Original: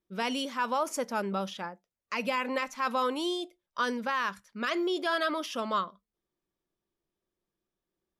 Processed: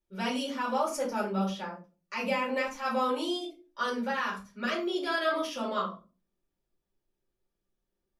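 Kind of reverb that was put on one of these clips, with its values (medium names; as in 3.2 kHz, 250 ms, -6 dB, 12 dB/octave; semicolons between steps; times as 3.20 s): simulated room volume 140 m³, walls furnished, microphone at 4.5 m; trim -9.5 dB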